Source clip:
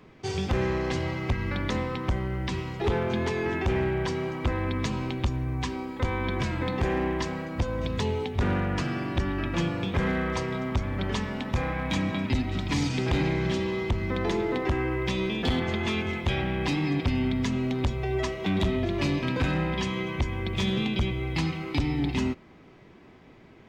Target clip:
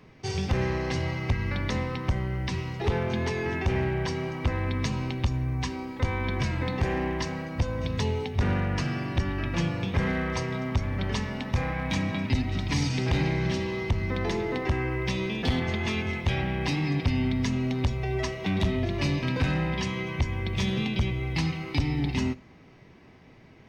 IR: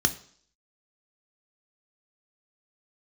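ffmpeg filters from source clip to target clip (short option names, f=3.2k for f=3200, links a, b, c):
-filter_complex "[0:a]asplit=2[a][b];[1:a]atrim=start_sample=2205,highshelf=f=4.7k:g=11.5[c];[b][c]afir=irnorm=-1:irlink=0,volume=-24.5dB[d];[a][d]amix=inputs=2:normalize=0"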